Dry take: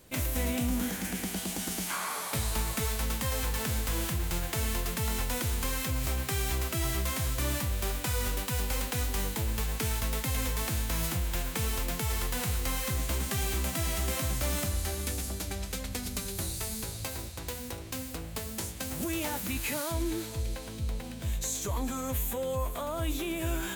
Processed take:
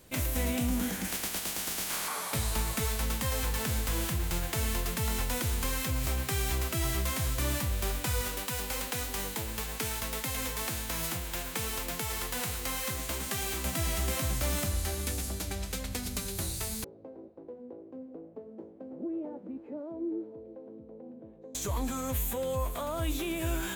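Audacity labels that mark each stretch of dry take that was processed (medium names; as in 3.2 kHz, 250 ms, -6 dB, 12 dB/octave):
1.070000	2.070000	spectral contrast reduction exponent 0.36
8.210000	13.650000	bass shelf 170 Hz -10 dB
16.840000	21.550000	Butterworth band-pass 380 Hz, Q 1.2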